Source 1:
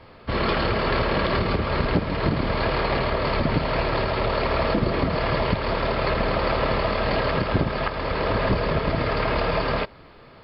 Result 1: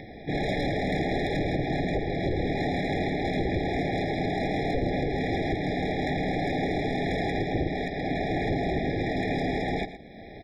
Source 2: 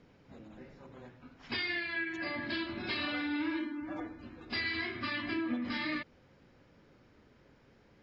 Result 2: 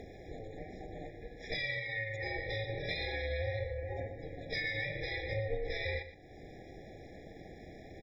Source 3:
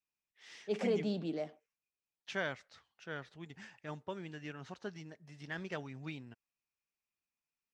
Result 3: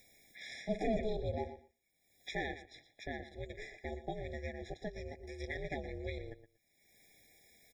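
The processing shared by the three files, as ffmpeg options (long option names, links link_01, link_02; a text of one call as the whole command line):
ffmpeg -i in.wav -filter_complex "[0:a]asplit=2[link_01][link_02];[link_02]acompressor=mode=upward:threshold=-27dB:ratio=2.5,volume=2dB[link_03];[link_01][link_03]amix=inputs=2:normalize=0,asoftclip=type=tanh:threshold=-13dB,aeval=exprs='0.224*(cos(1*acos(clip(val(0)/0.224,-1,1)))-cos(1*PI/2))+0.00316*(cos(7*acos(clip(val(0)/0.224,-1,1)))-cos(7*PI/2))':channel_layout=same,aeval=exprs='val(0)*sin(2*PI*220*n/s)':channel_layout=same,aecho=1:1:118|236:0.224|0.0358,afftfilt=real='re*eq(mod(floor(b*sr/1024/820),2),0)':imag='im*eq(mod(floor(b*sr/1024/820),2),0)':win_size=1024:overlap=0.75,volume=-5dB" out.wav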